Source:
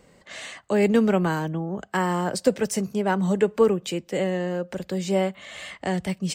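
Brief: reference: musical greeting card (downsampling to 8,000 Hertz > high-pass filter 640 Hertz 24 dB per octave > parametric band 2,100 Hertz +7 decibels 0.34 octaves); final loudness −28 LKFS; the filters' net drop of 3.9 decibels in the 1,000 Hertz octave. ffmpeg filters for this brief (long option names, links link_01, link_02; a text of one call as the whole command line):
ffmpeg -i in.wav -af "equalizer=frequency=1000:width_type=o:gain=-4.5,aresample=8000,aresample=44100,highpass=frequency=640:width=0.5412,highpass=frequency=640:width=1.3066,equalizer=frequency=2100:width_type=o:width=0.34:gain=7,volume=5dB" out.wav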